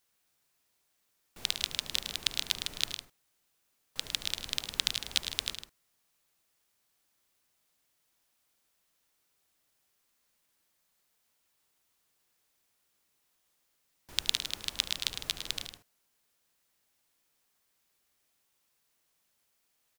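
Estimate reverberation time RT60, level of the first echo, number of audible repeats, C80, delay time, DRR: no reverb, -16.5 dB, 3, no reverb, 73 ms, no reverb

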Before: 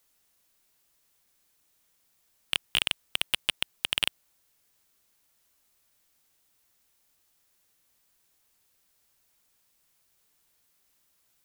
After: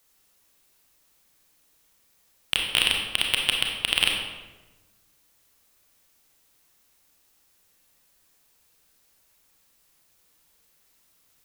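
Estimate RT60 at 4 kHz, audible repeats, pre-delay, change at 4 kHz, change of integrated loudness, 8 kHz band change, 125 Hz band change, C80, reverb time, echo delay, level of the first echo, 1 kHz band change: 0.80 s, no echo, 28 ms, +6.0 dB, +5.5 dB, +5.5 dB, +6.5 dB, 5.0 dB, 1.2 s, no echo, no echo, +6.5 dB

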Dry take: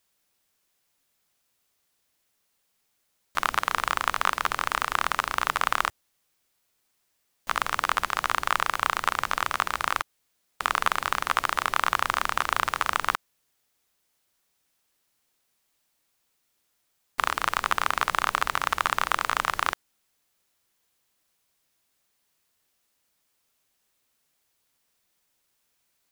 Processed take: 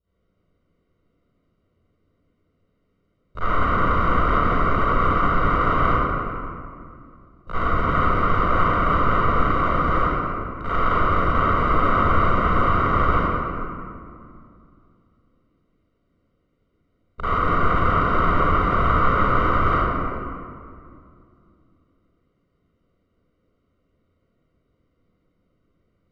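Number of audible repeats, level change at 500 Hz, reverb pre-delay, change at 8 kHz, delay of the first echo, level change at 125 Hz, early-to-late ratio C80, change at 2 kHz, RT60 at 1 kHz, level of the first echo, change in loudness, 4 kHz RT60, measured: no echo, +14.0 dB, 37 ms, under -20 dB, no echo, +23.0 dB, -4.0 dB, +0.5 dB, 2.2 s, no echo, +5.5 dB, 1.3 s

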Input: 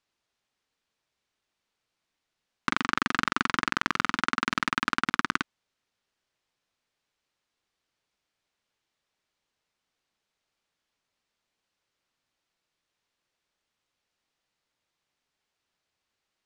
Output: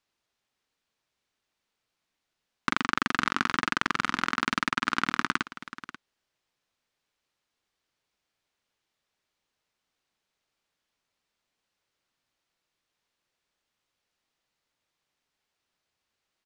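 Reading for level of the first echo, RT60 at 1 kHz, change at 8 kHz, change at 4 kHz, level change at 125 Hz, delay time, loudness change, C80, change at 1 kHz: -15.0 dB, no reverb, 0.0 dB, 0.0 dB, 0.0 dB, 537 ms, 0.0 dB, no reverb, 0.0 dB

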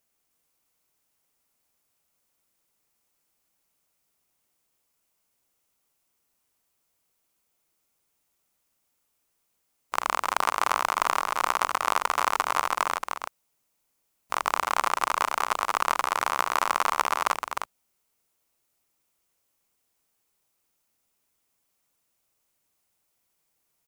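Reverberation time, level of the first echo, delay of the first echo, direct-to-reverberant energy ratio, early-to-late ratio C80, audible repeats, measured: no reverb, -5.5 dB, 305 ms, no reverb, no reverb, 1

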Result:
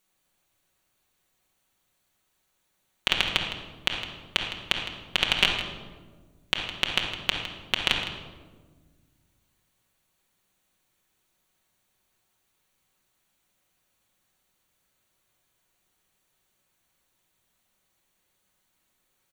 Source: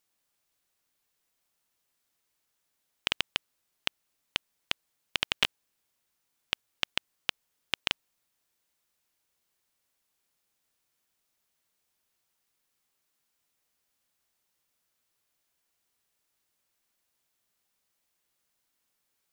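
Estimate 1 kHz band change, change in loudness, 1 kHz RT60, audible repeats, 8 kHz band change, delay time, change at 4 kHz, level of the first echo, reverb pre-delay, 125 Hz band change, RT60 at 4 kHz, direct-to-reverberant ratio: +8.0 dB, +6.0 dB, 1.2 s, 1, +4.5 dB, 160 ms, +6.5 dB, -12.5 dB, 5 ms, +12.0 dB, 0.80 s, -1.5 dB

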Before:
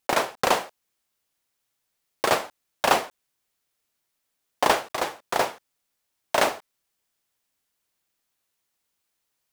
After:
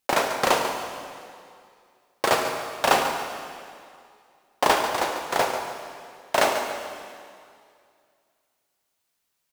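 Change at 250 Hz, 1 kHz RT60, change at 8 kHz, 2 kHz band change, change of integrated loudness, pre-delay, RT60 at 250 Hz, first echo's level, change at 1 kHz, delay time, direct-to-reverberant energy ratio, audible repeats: +1.5 dB, 2.3 s, +1.5 dB, +1.5 dB, +0.5 dB, 4 ms, 2.2 s, -10.0 dB, +2.0 dB, 142 ms, 3.0 dB, 2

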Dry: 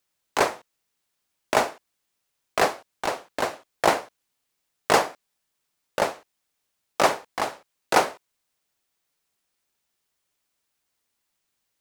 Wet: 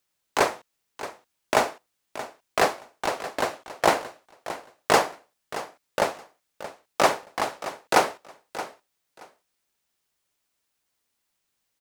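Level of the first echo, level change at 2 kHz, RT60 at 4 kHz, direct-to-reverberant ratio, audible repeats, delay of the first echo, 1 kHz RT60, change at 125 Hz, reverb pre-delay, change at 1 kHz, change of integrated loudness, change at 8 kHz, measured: -14.0 dB, 0.0 dB, no reverb, no reverb, 2, 625 ms, no reverb, 0.0 dB, no reverb, 0.0 dB, -1.0 dB, 0.0 dB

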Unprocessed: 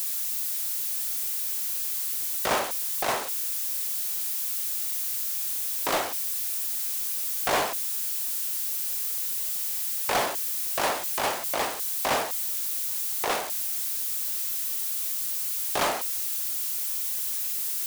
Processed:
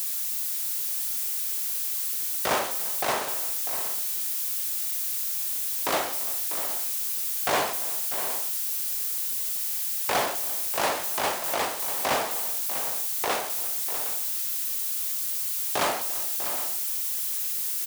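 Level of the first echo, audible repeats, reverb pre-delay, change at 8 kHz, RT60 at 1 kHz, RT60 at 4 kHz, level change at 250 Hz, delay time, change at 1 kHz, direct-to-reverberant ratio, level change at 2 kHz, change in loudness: -19.0 dB, 4, no reverb, +0.5 dB, no reverb, no reverb, +0.5 dB, 201 ms, +0.5 dB, no reverb, +0.5 dB, +0.5 dB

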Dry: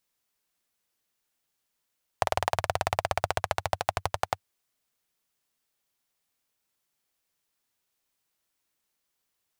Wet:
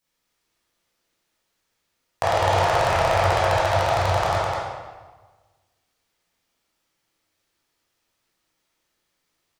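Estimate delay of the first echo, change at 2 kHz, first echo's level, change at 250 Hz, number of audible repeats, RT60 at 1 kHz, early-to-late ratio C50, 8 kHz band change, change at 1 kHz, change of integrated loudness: 207 ms, +9.0 dB, -2.5 dB, +12.0 dB, 1, 1.3 s, -4.0 dB, +5.0 dB, +9.0 dB, +9.5 dB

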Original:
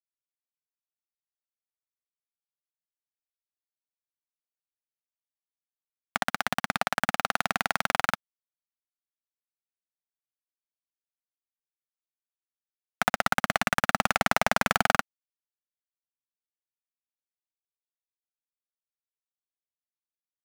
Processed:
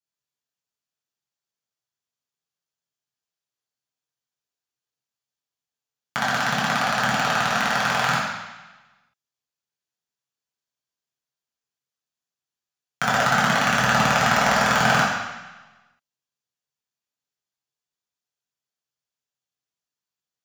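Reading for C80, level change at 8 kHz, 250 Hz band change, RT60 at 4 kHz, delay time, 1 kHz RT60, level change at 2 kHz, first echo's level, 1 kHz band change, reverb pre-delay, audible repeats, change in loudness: 3.5 dB, +7.0 dB, +8.0 dB, 1.2 s, no echo, 1.2 s, +7.0 dB, no echo, +7.0 dB, 3 ms, no echo, +7.0 dB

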